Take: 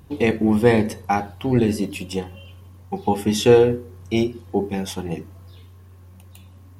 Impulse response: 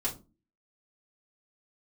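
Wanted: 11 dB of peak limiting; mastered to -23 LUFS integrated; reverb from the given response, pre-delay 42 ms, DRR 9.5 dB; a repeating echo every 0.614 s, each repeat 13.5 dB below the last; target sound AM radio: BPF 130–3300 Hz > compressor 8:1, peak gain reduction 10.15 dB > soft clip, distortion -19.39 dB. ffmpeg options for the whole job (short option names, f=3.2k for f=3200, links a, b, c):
-filter_complex "[0:a]alimiter=limit=-12.5dB:level=0:latency=1,aecho=1:1:614|1228:0.211|0.0444,asplit=2[a][b];[1:a]atrim=start_sample=2205,adelay=42[c];[b][c]afir=irnorm=-1:irlink=0,volume=-14dB[d];[a][d]amix=inputs=2:normalize=0,highpass=130,lowpass=3.3k,acompressor=threshold=-25dB:ratio=8,asoftclip=threshold=-20.5dB,volume=9.5dB"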